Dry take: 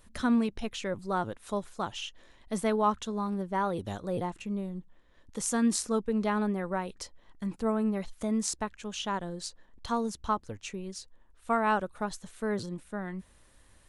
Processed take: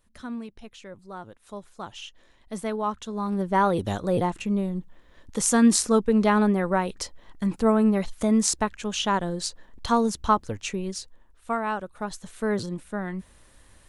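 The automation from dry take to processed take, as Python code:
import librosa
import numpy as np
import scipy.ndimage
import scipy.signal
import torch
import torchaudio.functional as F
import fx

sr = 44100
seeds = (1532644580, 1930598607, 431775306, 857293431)

y = fx.gain(x, sr, db=fx.line((1.26, -9.0), (2.07, -1.5), (2.99, -1.5), (3.48, 8.5), (10.89, 8.5), (11.76, -2.5), (12.34, 5.5)))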